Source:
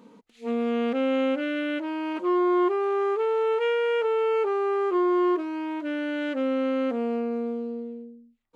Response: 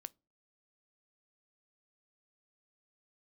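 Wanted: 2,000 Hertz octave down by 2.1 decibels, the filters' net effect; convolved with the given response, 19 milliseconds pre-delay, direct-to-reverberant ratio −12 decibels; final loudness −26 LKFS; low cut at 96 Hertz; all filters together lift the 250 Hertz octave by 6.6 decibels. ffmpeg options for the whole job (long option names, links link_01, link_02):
-filter_complex "[0:a]highpass=96,equalizer=frequency=250:width_type=o:gain=8.5,equalizer=frequency=2000:width_type=o:gain=-3,asplit=2[link_01][link_02];[1:a]atrim=start_sample=2205,adelay=19[link_03];[link_02][link_03]afir=irnorm=-1:irlink=0,volume=17.5dB[link_04];[link_01][link_04]amix=inputs=2:normalize=0,volume=-16.5dB"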